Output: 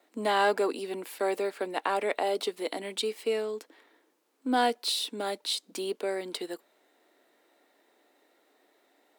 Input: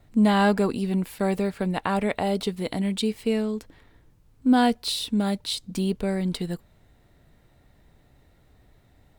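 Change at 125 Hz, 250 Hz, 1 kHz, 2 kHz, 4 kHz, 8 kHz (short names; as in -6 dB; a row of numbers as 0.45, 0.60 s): under -20 dB, -14.5 dB, -2.0 dB, -2.0 dB, -1.5 dB, -1.5 dB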